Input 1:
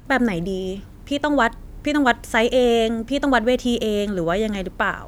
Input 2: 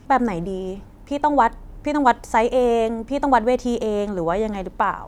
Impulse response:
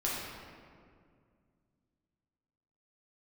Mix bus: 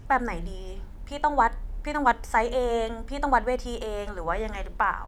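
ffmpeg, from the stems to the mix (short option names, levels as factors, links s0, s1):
-filter_complex "[0:a]highshelf=f=6400:g=-7,flanger=delay=9:depth=4.2:regen=77:speed=0.57:shape=triangular,volume=0.75[s0];[1:a]volume=-1,adelay=0.6,volume=0.531,asplit=2[s1][s2];[s2]apad=whole_len=223691[s3];[s0][s3]sidechaincompress=threshold=0.0631:ratio=8:attack=16:release=241[s4];[s4][s1]amix=inputs=2:normalize=0,lowshelf=f=82:g=11.5"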